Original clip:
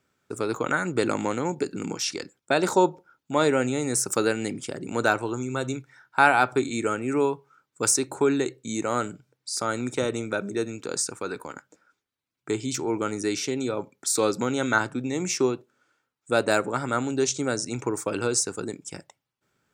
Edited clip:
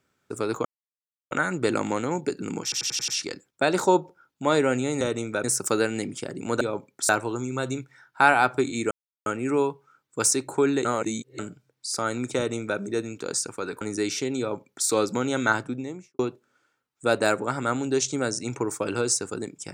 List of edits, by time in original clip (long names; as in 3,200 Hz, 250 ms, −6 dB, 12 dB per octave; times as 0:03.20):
0:00.65: splice in silence 0.66 s
0:01.97: stutter 0.09 s, 6 plays
0:06.89: splice in silence 0.35 s
0:08.48–0:09.02: reverse
0:09.99–0:10.42: duplicate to 0:03.90
0:11.44–0:13.07: remove
0:13.65–0:14.13: duplicate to 0:05.07
0:14.84–0:15.45: fade out and dull